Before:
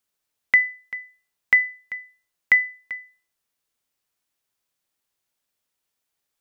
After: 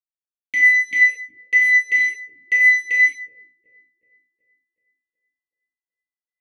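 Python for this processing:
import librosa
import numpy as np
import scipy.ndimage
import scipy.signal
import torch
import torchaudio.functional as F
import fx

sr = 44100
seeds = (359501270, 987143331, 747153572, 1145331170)

y = scipy.signal.sosfilt(scipy.signal.ellip(3, 1.0, 40, [600.0, 2100.0], 'bandstop', fs=sr, output='sos'), x)
y = fx.fuzz(y, sr, gain_db=45.0, gate_db=-53.0)
y = fx.echo_wet_lowpass(y, sr, ms=374, feedback_pct=50, hz=480.0, wet_db=-12.0)
y = fx.rev_gated(y, sr, seeds[0], gate_ms=250, shape='falling', drr_db=-6.5)
y = fx.vowel_sweep(y, sr, vowels='e-i', hz=2.7)
y = y * librosa.db_to_amplitude(2.0)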